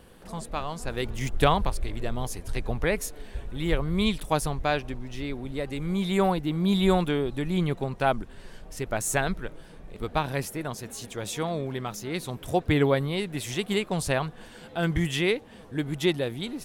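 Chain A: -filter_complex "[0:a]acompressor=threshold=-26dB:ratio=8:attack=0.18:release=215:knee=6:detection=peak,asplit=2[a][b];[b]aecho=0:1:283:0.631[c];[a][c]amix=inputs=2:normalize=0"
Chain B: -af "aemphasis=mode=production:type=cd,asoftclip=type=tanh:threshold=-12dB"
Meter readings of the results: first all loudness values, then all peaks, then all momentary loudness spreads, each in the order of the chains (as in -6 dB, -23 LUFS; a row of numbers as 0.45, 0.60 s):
-34.5, -28.5 LUFS; -20.0, -12.5 dBFS; 6, 12 LU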